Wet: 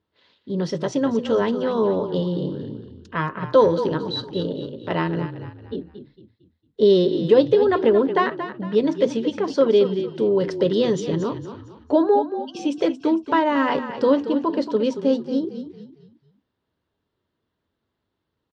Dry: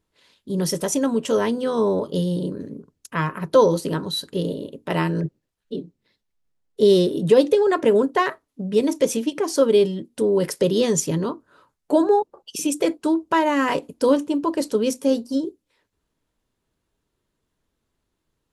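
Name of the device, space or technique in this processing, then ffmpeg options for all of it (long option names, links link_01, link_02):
frequency-shifting delay pedal into a guitar cabinet: -filter_complex "[0:a]asplit=5[link_01][link_02][link_03][link_04][link_05];[link_02]adelay=227,afreqshift=-31,volume=-10.5dB[link_06];[link_03]adelay=454,afreqshift=-62,volume=-18.9dB[link_07];[link_04]adelay=681,afreqshift=-93,volume=-27.3dB[link_08];[link_05]adelay=908,afreqshift=-124,volume=-35.7dB[link_09];[link_01][link_06][link_07][link_08][link_09]amix=inputs=5:normalize=0,highpass=83,equalizer=frequency=86:width_type=q:width=4:gain=4,equalizer=frequency=160:width_type=q:width=4:gain=-3,equalizer=frequency=2400:width_type=q:width=4:gain=-5,lowpass=frequency=4300:width=0.5412,lowpass=frequency=4300:width=1.3066"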